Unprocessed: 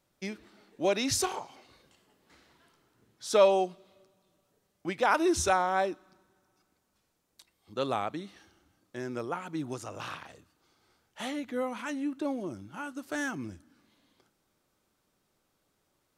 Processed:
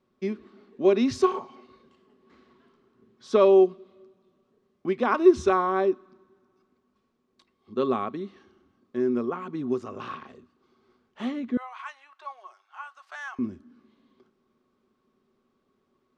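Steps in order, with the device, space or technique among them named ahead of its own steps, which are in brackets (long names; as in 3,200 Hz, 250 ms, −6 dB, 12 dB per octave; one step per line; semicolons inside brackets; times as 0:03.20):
inside a cardboard box (low-pass filter 4,000 Hz 12 dB per octave; hollow resonant body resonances 240/380/1,100 Hz, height 17 dB, ringing for 75 ms)
0:11.57–0:13.39: elliptic high-pass filter 750 Hz, stop band 70 dB
level −2.5 dB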